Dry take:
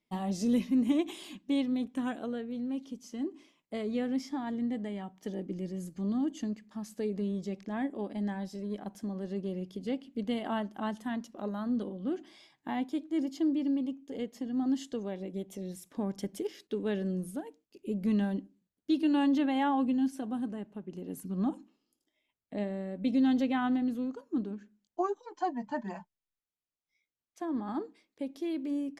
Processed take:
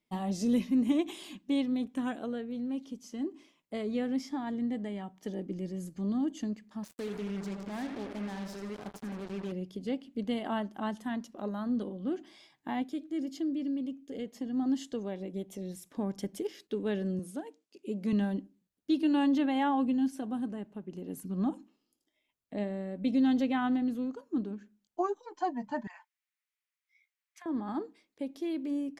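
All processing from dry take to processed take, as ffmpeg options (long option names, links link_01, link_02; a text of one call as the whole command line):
ffmpeg -i in.wav -filter_complex "[0:a]asettb=1/sr,asplit=3[link_01][link_02][link_03];[link_01]atrim=end=6.834[link_04];[link_02]atrim=start=6.83:end=9.52,asetpts=PTS-STARTPTS,afade=type=in:duration=0.004:curve=qsin,afade=type=out:start_time=2.686:duration=0.004:curve=qsin,aecho=1:1:81|162|243|324|405|486|567:0.355|0.206|0.119|0.0692|0.0402|0.0233|0.0135,atrim=end_sample=118629,acompressor=threshold=-41dB:ratio=1.5:attack=3.2:release=140:knee=1:detection=peak,acrusher=bits=6:mix=0:aa=0.5[link_05];[link_03]atrim=start=9.516[link_06];[link_04][link_05]acrossfade=duration=0.004:curve1=hsin:curve2=qsin[link_07];[link_07][link_06]acrossfade=duration=0.004:curve1=qsin:curve2=hsin,asettb=1/sr,asplit=3[link_08][link_09][link_10];[link_08]atrim=end=12.824[link_11];[link_09]atrim=start=12.82:end=14.26,asetpts=PTS-STARTPTS,afade=type=in:duration=0.004:curve=qsin,afade=type=out:start_time=1.436:duration=0.004:curve=qsin,equalizer=frequency=940:width=3.9:gain=-13.5,acompressor=threshold=-35dB:ratio=1.5:attack=3.2:release=140:knee=1:detection=peak[link_12];[link_10]atrim=start=14.256[link_13];[link_11][link_12]acrossfade=duration=0.004:curve1=hsin:curve2=qsin[link_14];[link_14][link_13]acrossfade=duration=0.004:curve1=qsin:curve2=hsin,asettb=1/sr,asplit=3[link_15][link_16][link_17];[link_15]atrim=end=17.194[link_18];[link_16]atrim=start=17.19:end=18.13,asetpts=PTS-STARTPTS,afade=type=in:duration=0.004:curve=qsin,afade=type=out:start_time=0.936:duration=0.004:curve=qsin,highpass=200,lowpass=7800,highshelf=frequency=5300:gain=6.5[link_19];[link_17]atrim=start=18.126[link_20];[link_18][link_19]acrossfade=duration=0.004:curve1=hsin:curve2=qsin[link_21];[link_21][link_20]acrossfade=duration=0.004:curve1=qsin:curve2=hsin,asettb=1/sr,asplit=3[link_22][link_23][link_24];[link_22]atrim=end=25.874[link_25];[link_23]atrim=start=25.87:end=27.46,asetpts=PTS-STARTPTS,afade=type=in:duration=0.004:curve=qsin,afade=type=out:start_time=1.586:duration=0.004:curve=qsin,highpass=frequency=950:width=0.5412,highpass=frequency=950:width=1.3066,equalizer=frequency=2100:width_type=o:width=0.83:gain=10.5,acompressor=threshold=-47dB:ratio=10:attack=3.2:release=140:knee=1:detection=peak[link_26];[link_24]atrim=start=27.456[link_27];[link_25][link_26]acrossfade=duration=0.004:curve1=hsin:curve2=qsin[link_28];[link_28][link_27]acrossfade=duration=0.004:curve1=qsin:curve2=hsin" out.wav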